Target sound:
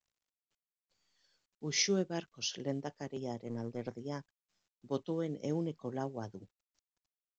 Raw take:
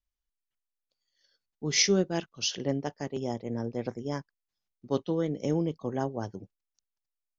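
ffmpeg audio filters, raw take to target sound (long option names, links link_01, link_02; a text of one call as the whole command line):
ffmpeg -i in.wav -filter_complex "[0:a]highpass=frequency=64:width=0.5412,highpass=frequency=64:width=1.3066,asettb=1/sr,asplit=3[link_01][link_02][link_03];[link_01]atrim=end=3.474[link_04];[link_02]atrim=start=3.47:end=3.9,asetpts=PTS-STARTPTS,afade=type=in:duration=0.004:curve=qsin,afade=type=out:start_time=0.426:duration=0.004:curve=qsin,aeval=exprs='0.112*(cos(1*acos(clip(val(0)/0.112,-1,1)))-cos(1*PI/2))+0.00355*(cos(8*acos(clip(val(0)/0.112,-1,1)))-cos(8*PI/2))':channel_layout=same[link_05];[link_03]atrim=start=3.896[link_06];[link_04][link_05]acrossfade=duration=0.004:curve1=hsin:curve2=qsin[link_07];[link_07][link_06]acrossfade=duration=0.004:curve1=qsin:curve2=hsin,volume=-7dB" -ar 16000 -c:a pcm_mulaw out.wav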